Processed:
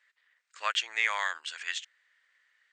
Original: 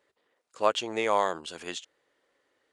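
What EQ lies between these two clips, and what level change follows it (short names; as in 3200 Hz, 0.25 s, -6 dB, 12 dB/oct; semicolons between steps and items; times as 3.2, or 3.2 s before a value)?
resonant high-pass 1800 Hz, resonance Q 2.9; brick-wall FIR low-pass 8900 Hz; 0.0 dB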